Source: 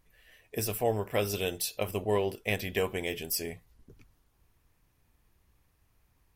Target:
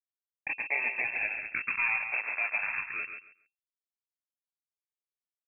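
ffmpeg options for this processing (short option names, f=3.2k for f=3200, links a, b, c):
-filter_complex "[0:a]highpass=f=97:p=1,aemphasis=mode=production:type=50fm,acontrast=73,alimiter=limit=-13dB:level=0:latency=1:release=40,acompressor=threshold=-28dB:ratio=3,aresample=11025,acrusher=bits=5:mix=0:aa=0.000001,aresample=44100,asetrate=51156,aresample=44100,acrusher=samples=22:mix=1:aa=0.000001:lfo=1:lforange=13.2:lforate=0.33,afreqshift=-220,asplit=2[a][b];[b]aecho=0:1:139|278|417:0.422|0.0843|0.0169[c];[a][c]amix=inputs=2:normalize=0,lowpass=f=2.3k:t=q:w=0.5098,lowpass=f=2.3k:t=q:w=0.6013,lowpass=f=2.3k:t=q:w=0.9,lowpass=f=2.3k:t=q:w=2.563,afreqshift=-2700"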